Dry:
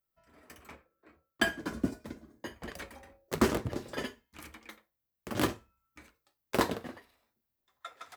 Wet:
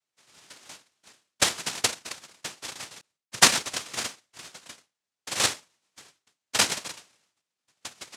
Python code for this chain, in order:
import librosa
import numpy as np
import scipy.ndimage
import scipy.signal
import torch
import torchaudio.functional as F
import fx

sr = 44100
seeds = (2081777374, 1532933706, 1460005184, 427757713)

y = fx.noise_vocoder(x, sr, seeds[0], bands=1)
y = fx.band_widen(y, sr, depth_pct=100, at=(3.01, 3.74))
y = y * librosa.db_to_amplitude(5.0)